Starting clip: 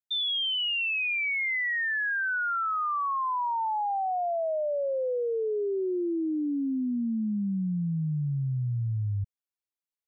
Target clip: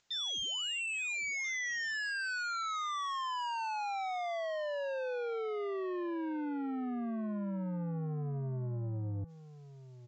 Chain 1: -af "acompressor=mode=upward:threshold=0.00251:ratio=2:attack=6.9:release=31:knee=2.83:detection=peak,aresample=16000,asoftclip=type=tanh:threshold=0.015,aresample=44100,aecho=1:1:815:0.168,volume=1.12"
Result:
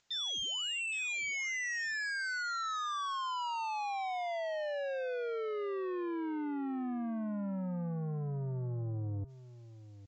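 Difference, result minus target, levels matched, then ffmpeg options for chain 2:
echo 522 ms early
-af "acompressor=mode=upward:threshold=0.00251:ratio=2:attack=6.9:release=31:knee=2.83:detection=peak,aresample=16000,asoftclip=type=tanh:threshold=0.015,aresample=44100,aecho=1:1:1337:0.168,volume=1.12"

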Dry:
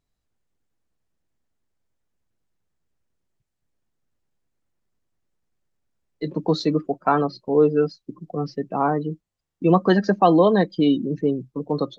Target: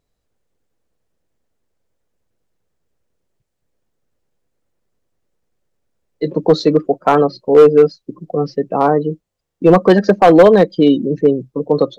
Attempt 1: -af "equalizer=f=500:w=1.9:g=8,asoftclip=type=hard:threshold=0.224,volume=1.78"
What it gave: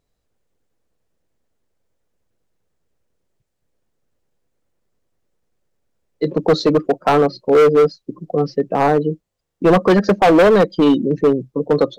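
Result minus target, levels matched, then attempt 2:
hard clipper: distortion +8 dB
-af "equalizer=f=500:w=1.9:g=8,asoftclip=type=hard:threshold=0.447,volume=1.78"

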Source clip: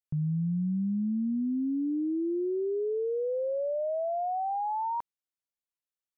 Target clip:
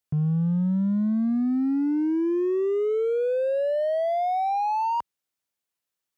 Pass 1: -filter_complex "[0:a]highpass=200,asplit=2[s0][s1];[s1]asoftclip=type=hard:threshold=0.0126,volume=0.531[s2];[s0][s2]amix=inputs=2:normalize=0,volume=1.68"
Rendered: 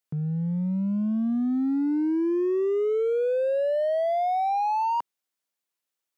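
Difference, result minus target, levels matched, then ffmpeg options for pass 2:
125 Hz band -3.0 dB
-filter_complex "[0:a]highpass=55,asplit=2[s0][s1];[s1]asoftclip=type=hard:threshold=0.0126,volume=0.531[s2];[s0][s2]amix=inputs=2:normalize=0,volume=1.68"

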